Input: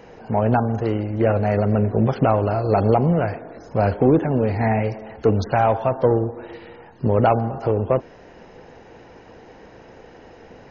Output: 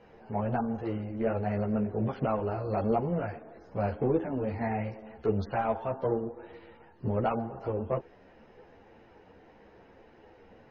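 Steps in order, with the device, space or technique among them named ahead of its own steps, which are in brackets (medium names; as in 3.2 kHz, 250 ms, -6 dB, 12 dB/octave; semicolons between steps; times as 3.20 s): string-machine ensemble chorus (three-phase chorus; low-pass 4 kHz 12 dB/octave); trim -8 dB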